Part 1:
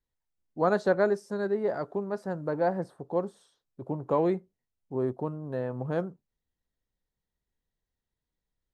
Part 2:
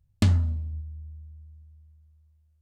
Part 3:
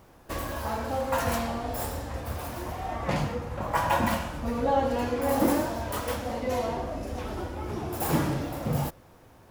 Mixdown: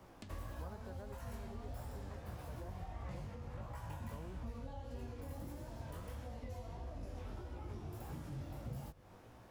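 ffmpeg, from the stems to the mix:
ffmpeg -i stem1.wav -i stem2.wav -i stem3.wav -filter_complex "[0:a]acrusher=bits=7:dc=4:mix=0:aa=0.000001,volume=-16dB[link_01];[1:a]highpass=270,volume=-18dB[link_02];[2:a]acrossover=split=150|2900|6800[link_03][link_04][link_05][link_06];[link_03]acompressor=threshold=-40dB:ratio=4[link_07];[link_04]acompressor=threshold=-36dB:ratio=4[link_08];[link_05]acompressor=threshold=-53dB:ratio=4[link_09];[link_06]acompressor=threshold=-41dB:ratio=4[link_10];[link_07][link_08][link_09][link_10]amix=inputs=4:normalize=0,flanger=delay=16:depth=6.3:speed=1.6,volume=-1dB[link_11];[link_01][link_02][link_11]amix=inputs=3:normalize=0,highshelf=frequency=8500:gain=-6.5,acrossover=split=140[link_12][link_13];[link_13]acompressor=threshold=-54dB:ratio=3[link_14];[link_12][link_14]amix=inputs=2:normalize=0" out.wav

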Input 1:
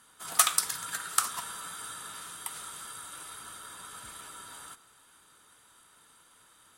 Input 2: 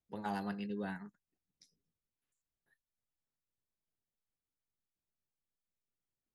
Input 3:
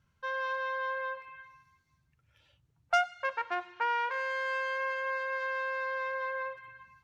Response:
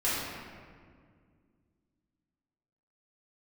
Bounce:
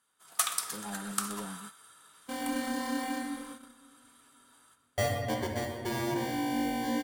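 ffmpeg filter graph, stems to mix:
-filter_complex "[0:a]volume=-7dB,asplit=3[link_01][link_02][link_03];[link_02]volume=-17.5dB[link_04];[link_03]volume=-13.5dB[link_05];[1:a]bandpass=frequency=230:width_type=q:width=0.53:csg=0,aeval=exprs='clip(val(0),-1,0.0119)':channel_layout=same,adelay=600,volume=2.5dB[link_06];[2:a]acrusher=samples=34:mix=1:aa=0.000001,adelay=2050,volume=-4.5dB,asplit=3[link_07][link_08][link_09];[link_08]volume=-7.5dB[link_10];[link_09]volume=-9dB[link_11];[3:a]atrim=start_sample=2205[link_12];[link_04][link_10]amix=inputs=2:normalize=0[link_13];[link_13][link_12]afir=irnorm=-1:irlink=0[link_14];[link_05][link_11]amix=inputs=2:normalize=0,aecho=0:1:125:1[link_15];[link_01][link_06][link_07][link_14][link_15]amix=inputs=5:normalize=0,agate=range=-10dB:threshold=-43dB:ratio=16:detection=peak,lowshelf=frequency=100:gain=-9.5"

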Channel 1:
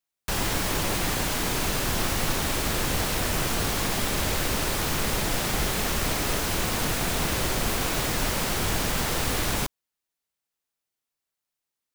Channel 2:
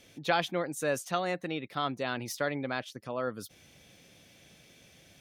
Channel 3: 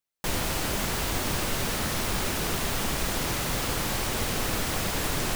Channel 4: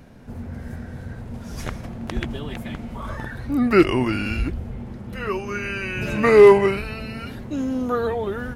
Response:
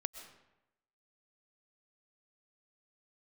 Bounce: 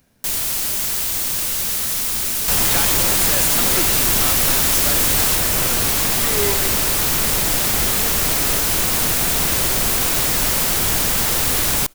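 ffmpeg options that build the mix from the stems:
-filter_complex "[0:a]highshelf=frequency=2300:gain=-9,adelay=2200,volume=2dB,asplit=2[link_01][link_02];[link_02]volume=-21dB[link_03];[1:a]adelay=2450,volume=-3dB[link_04];[2:a]volume=-9dB,asplit=2[link_05][link_06];[link_06]volume=-7dB[link_07];[3:a]volume=-15.5dB[link_08];[4:a]atrim=start_sample=2205[link_09];[link_03][link_07]amix=inputs=2:normalize=0[link_10];[link_10][link_09]afir=irnorm=-1:irlink=0[link_11];[link_01][link_04][link_05][link_08][link_11]amix=inputs=5:normalize=0,crystalizer=i=6:c=0"

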